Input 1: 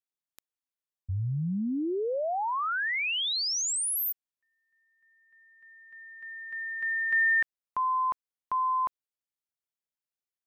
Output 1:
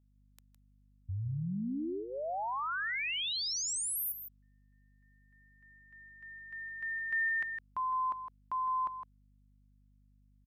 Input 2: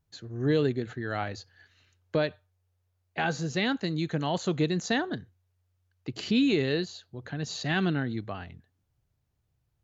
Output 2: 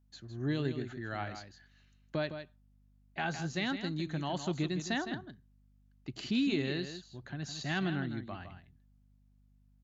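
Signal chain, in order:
parametric band 470 Hz −12.5 dB 0.22 octaves
mains hum 50 Hz, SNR 30 dB
single-tap delay 160 ms −9.5 dB
level −6 dB

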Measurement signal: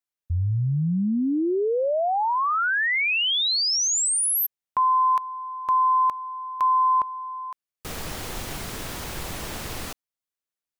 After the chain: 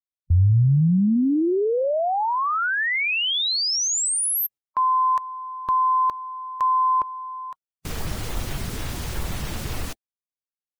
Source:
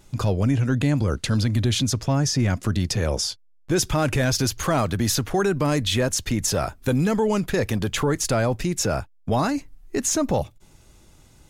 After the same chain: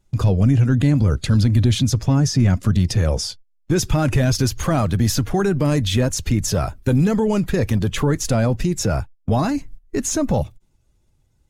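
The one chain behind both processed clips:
spectral magnitudes quantised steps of 15 dB
noise gate −40 dBFS, range −17 dB
low-shelf EQ 220 Hz +9 dB

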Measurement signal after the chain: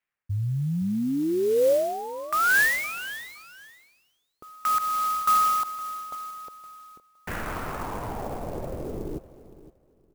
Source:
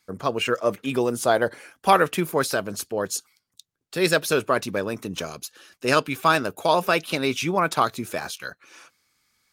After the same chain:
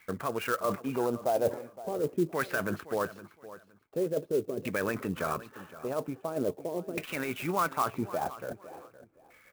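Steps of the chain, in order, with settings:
parametric band 2,700 Hz +5.5 dB 0.92 octaves
reversed playback
downward compressor 16 to 1, threshold −30 dBFS
reversed playback
brickwall limiter −27.5 dBFS
auto-filter low-pass saw down 0.43 Hz 340–2,100 Hz
repeating echo 515 ms, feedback 22%, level −16 dB
converter with an unsteady clock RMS 0.029 ms
level +5.5 dB

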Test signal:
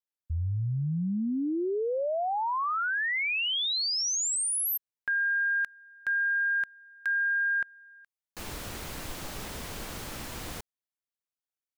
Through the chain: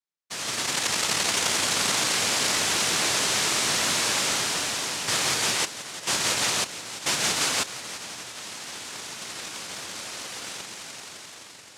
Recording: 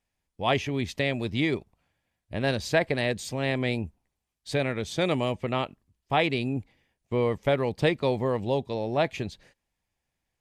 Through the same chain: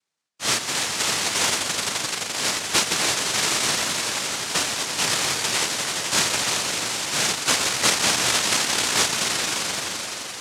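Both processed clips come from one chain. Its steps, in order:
echo that builds up and dies away 86 ms, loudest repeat 5, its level −9 dB
cochlear-implant simulation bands 1
level +1.5 dB

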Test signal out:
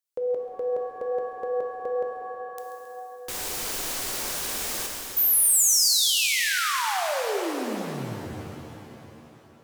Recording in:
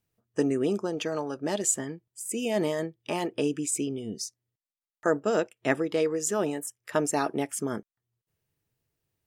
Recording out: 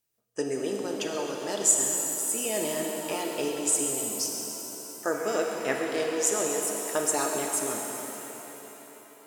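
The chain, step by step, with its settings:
bass and treble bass −11 dB, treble +8 dB
echo with a time of its own for lows and highs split 1,000 Hz, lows 317 ms, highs 135 ms, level −13.5 dB
reverb with rising layers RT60 3.5 s, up +7 semitones, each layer −8 dB, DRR 1 dB
level −3 dB

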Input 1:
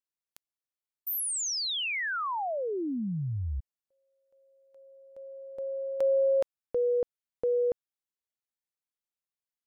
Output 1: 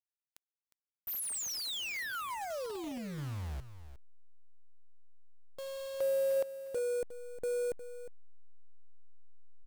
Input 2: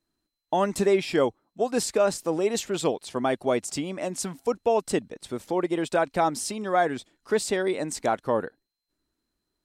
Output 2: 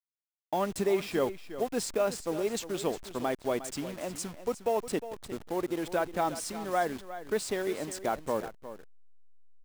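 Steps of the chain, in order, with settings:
hold until the input has moved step −34 dBFS
single-tap delay 358 ms −13 dB
level −6 dB

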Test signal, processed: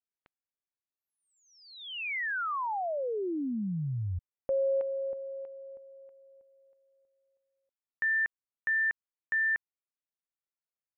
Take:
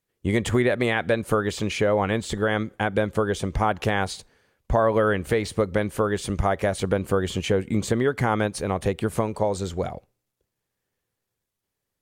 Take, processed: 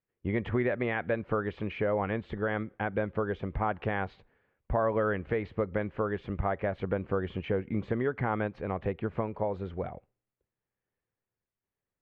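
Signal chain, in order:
low-pass filter 2,500 Hz 24 dB per octave
level −7.5 dB

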